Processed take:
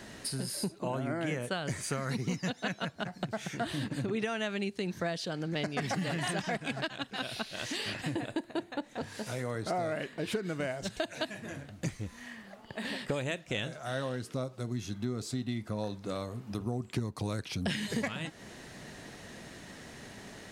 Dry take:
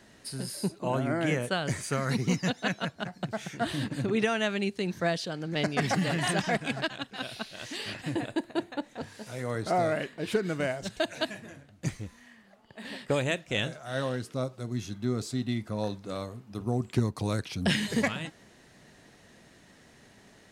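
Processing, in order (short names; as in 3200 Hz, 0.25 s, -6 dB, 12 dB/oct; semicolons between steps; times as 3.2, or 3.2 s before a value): compressor 3:1, threshold -44 dBFS, peak gain reduction 17.5 dB; gain +8.5 dB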